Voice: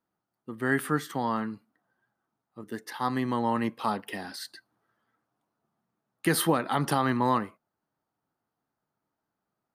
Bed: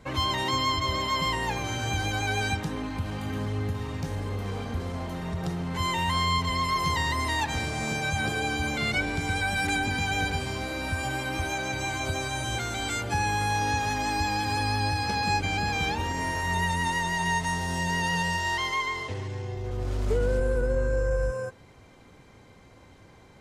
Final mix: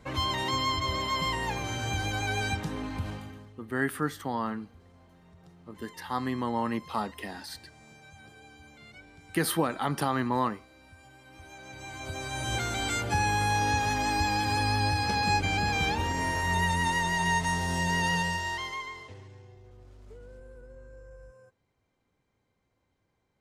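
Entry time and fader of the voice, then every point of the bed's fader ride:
3.10 s, −2.5 dB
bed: 0:03.09 −2.5 dB
0:03.56 −24 dB
0:11.18 −24 dB
0:12.55 0 dB
0:18.11 0 dB
0:19.96 −23.5 dB

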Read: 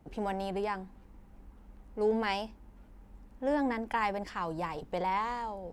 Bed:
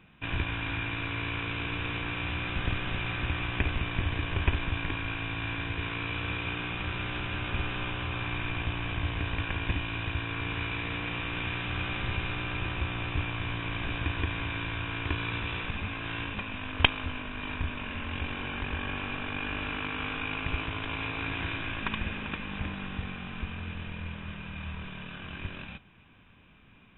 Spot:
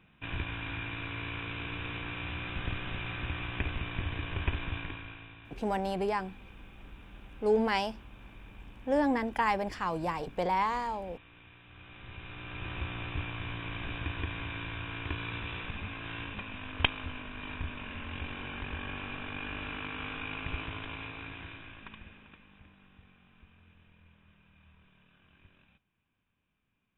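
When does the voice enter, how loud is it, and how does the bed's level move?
5.45 s, +2.5 dB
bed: 0:04.76 −5 dB
0:05.61 −22.5 dB
0:11.63 −22.5 dB
0:12.76 −5 dB
0:20.73 −5 dB
0:22.64 −23 dB

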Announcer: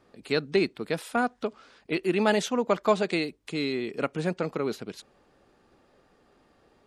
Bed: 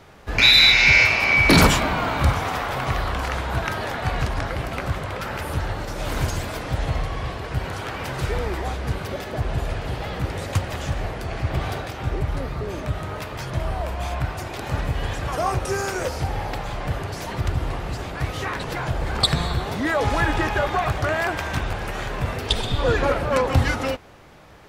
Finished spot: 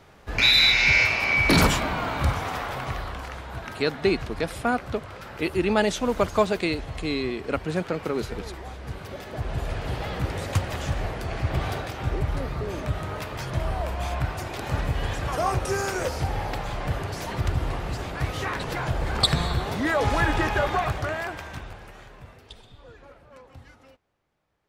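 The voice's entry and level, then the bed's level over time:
3.50 s, +1.5 dB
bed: 0:02.65 −4.5 dB
0:03.37 −11 dB
0:08.70 −11 dB
0:09.91 −1.5 dB
0:20.73 −1.5 dB
0:22.92 −28.5 dB

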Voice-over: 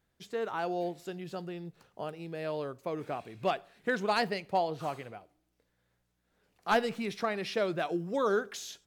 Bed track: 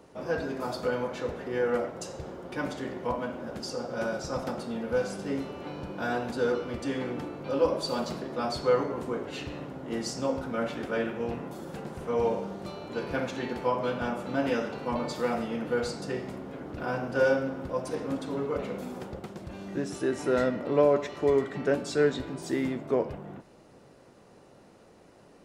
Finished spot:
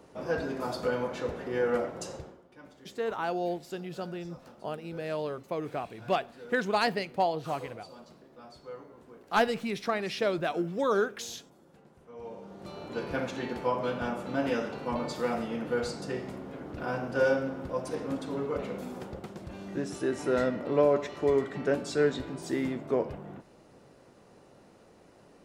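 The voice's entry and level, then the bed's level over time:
2.65 s, +2.0 dB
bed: 0:02.15 −0.5 dB
0:02.48 −19.5 dB
0:12.13 −19.5 dB
0:12.80 −1.5 dB

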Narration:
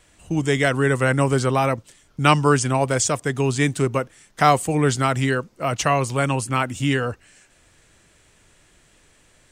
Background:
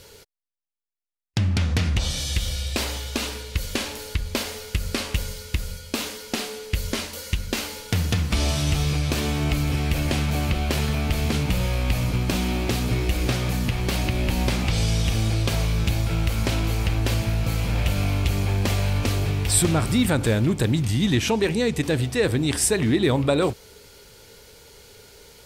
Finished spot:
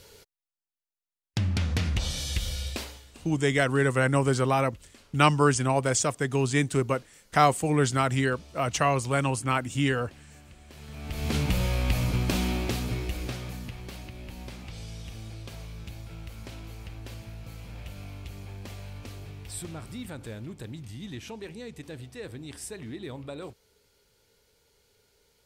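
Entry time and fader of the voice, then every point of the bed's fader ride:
2.95 s, −4.5 dB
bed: 0:02.68 −5 dB
0:03.24 −28.5 dB
0:10.64 −28.5 dB
0:11.36 −3 dB
0:12.44 −3 dB
0:14.10 −18.5 dB

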